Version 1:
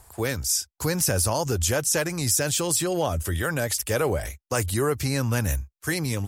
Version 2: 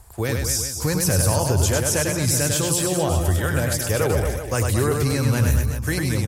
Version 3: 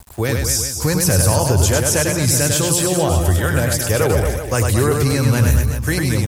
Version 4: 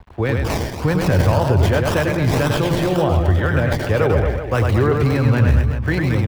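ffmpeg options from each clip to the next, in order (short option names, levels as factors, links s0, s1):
-filter_complex "[0:a]lowshelf=f=150:g=8,asplit=2[s0][s1];[s1]aecho=0:1:100|225|381.2|576.6|820.7:0.631|0.398|0.251|0.158|0.1[s2];[s0][s2]amix=inputs=2:normalize=0"
-af "aeval=exprs='val(0)*gte(abs(val(0)),0.00596)':c=same,volume=1.68"
-filter_complex "[0:a]adynamicsmooth=sensitivity=3:basefreq=5000,acrossover=split=260|3700[s0][s1][s2];[s2]acrusher=samples=27:mix=1:aa=0.000001:lfo=1:lforange=16.2:lforate=1.9[s3];[s0][s1][s3]amix=inputs=3:normalize=0"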